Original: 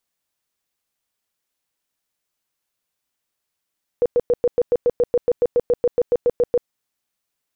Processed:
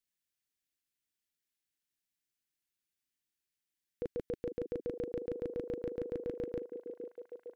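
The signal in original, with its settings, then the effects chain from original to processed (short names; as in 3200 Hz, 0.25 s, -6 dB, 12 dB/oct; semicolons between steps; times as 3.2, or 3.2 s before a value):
tone bursts 484 Hz, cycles 18, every 0.14 s, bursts 19, -12.5 dBFS
band shelf 750 Hz -12.5 dB; level quantiser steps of 18 dB; on a send: delay with a stepping band-pass 0.459 s, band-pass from 350 Hz, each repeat 0.7 oct, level -5 dB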